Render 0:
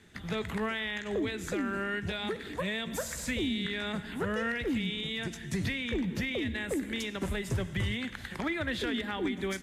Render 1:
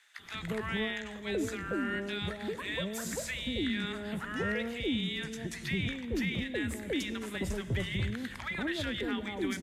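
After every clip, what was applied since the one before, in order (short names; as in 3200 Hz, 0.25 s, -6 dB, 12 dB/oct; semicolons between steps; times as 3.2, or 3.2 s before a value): bands offset in time highs, lows 0.19 s, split 890 Hz; gain -1 dB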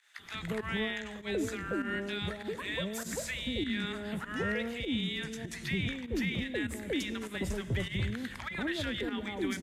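pump 99 bpm, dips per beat 1, -11 dB, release 0.107 s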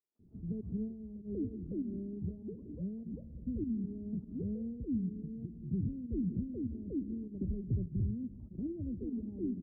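inverse Chebyshev low-pass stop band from 1900 Hz, stop band 80 dB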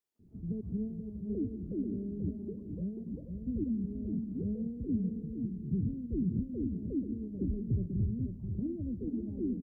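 echo 0.486 s -6.5 dB; gain +2 dB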